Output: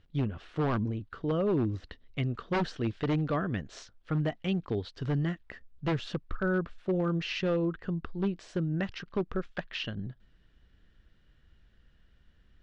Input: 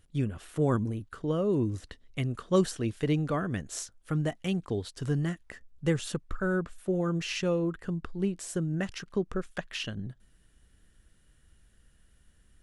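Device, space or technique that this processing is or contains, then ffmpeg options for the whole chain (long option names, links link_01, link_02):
synthesiser wavefolder: -af "aeval=exprs='0.0794*(abs(mod(val(0)/0.0794+3,4)-2)-1)':channel_layout=same,lowpass=frequency=4500:width=0.5412,lowpass=frequency=4500:width=1.3066"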